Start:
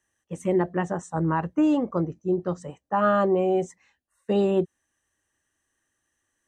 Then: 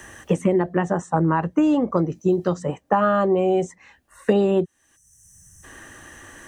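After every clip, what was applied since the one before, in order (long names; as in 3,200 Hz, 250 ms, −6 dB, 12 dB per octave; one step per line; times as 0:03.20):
in parallel at −3 dB: downward compressor, threshold −30 dBFS, peak gain reduction 12 dB
on the sum: gain on a spectral selection 0:04.96–0:05.64, 210–5,300 Hz −25 dB
multiband upward and downward compressor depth 100%
level +1.5 dB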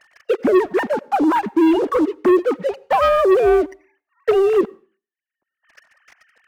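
three sine waves on the formant tracks
leveller curve on the samples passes 3
convolution reverb RT60 0.40 s, pre-delay 78 ms, DRR 24.5 dB
level −3.5 dB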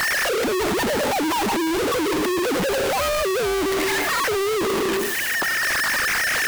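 sign of each sample alone
level −3 dB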